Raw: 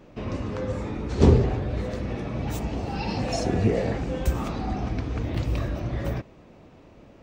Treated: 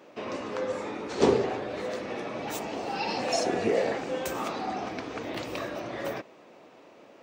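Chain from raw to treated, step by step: HPF 400 Hz 12 dB/oct; gain +2.5 dB

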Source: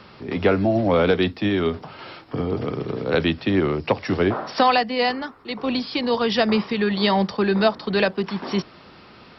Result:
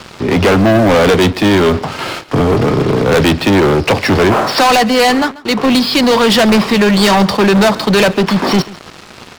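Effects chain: sample leveller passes 5; echo 0.138 s -20 dB

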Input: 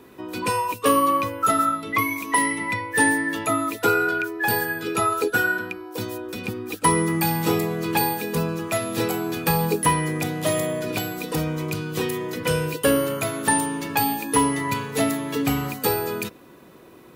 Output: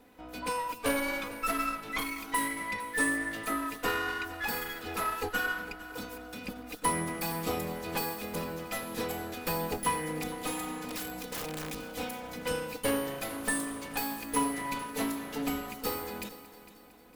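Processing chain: minimum comb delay 4 ms; added harmonics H 3 -33 dB, 8 -42 dB, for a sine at -6.5 dBFS; 10.88–11.75 wrapped overs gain 22.5 dB; on a send: multi-head echo 0.228 s, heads first and second, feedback 47%, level -18 dB; on the sum: gain -8.5 dB

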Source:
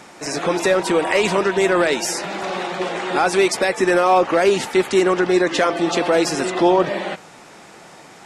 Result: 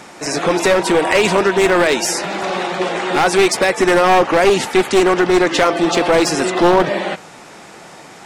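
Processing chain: one-sided fold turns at -13 dBFS; gain +4.5 dB

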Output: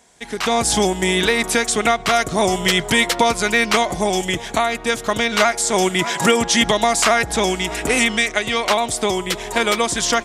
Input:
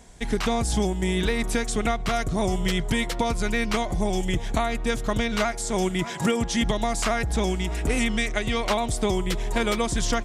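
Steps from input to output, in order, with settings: HPF 520 Hz 6 dB/oct; AGC gain up to 14 dB

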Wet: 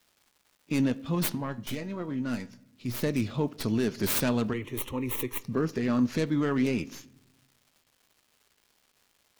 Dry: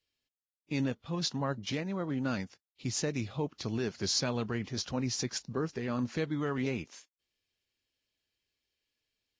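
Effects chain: tracing distortion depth 0.42 ms; bell 250 Hz +5 dB 0.67 oct; notch 780 Hz, Q 12; in parallel at -1 dB: limiter -26 dBFS, peak gain reduction 7.5 dB; on the sum: crackle 440/s -52 dBFS; 1.35–3.03 resonator 120 Hz, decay 0.2 s, harmonics all, mix 70%; 4.53–5.42 fixed phaser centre 1000 Hz, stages 8; on a send at -17.5 dB: reverb RT60 0.90 s, pre-delay 5 ms

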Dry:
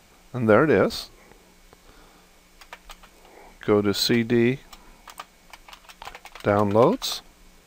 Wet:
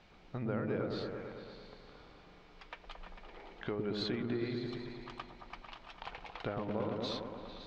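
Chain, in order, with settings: LPF 4400 Hz 24 dB/oct; compressor 6:1, threshold -30 dBFS, peak gain reduction 17 dB; repeats that get brighter 0.112 s, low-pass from 400 Hz, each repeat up 1 oct, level 0 dB; gain -6.5 dB

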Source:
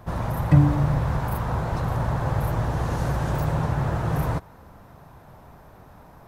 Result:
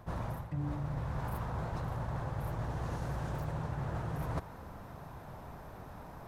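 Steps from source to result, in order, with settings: reverse; compressor 16:1, threshold -33 dBFS, peak gain reduction 23.5 dB; reverse; Doppler distortion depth 0.12 ms

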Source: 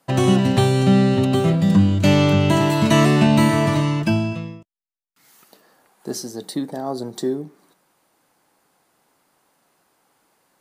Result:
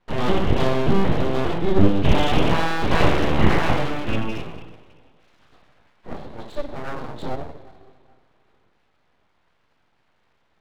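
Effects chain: LPC vocoder at 8 kHz pitch kept; two-slope reverb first 0.55 s, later 2.3 s, from -18 dB, DRR -8 dB; full-wave rectifier; gain -8 dB

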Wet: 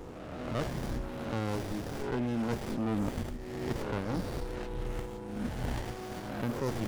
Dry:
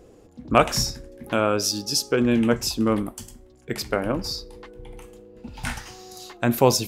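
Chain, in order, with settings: spectral swells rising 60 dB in 0.67 s; reverse; compressor 12:1, threshold -32 dBFS, peak gain reduction 23.5 dB; reverse; sample leveller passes 1; running maximum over 33 samples; gain +1 dB

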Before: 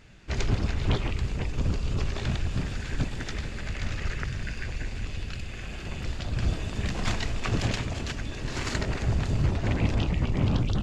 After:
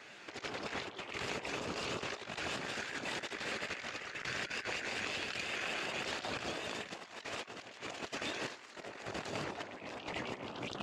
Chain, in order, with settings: limiter -20 dBFS, peak gain reduction 7 dB; HPF 480 Hz 12 dB/oct; negative-ratio compressor -44 dBFS, ratio -0.5; high shelf 5200 Hz -5.5 dB; shaped vibrato saw up 5.4 Hz, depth 100 cents; gain +3.5 dB

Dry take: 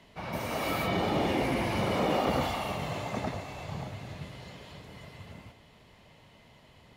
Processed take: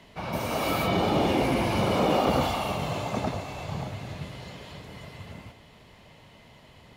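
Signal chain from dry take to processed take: dynamic EQ 1900 Hz, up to -7 dB, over -56 dBFS, Q 4.7; gain +4.5 dB

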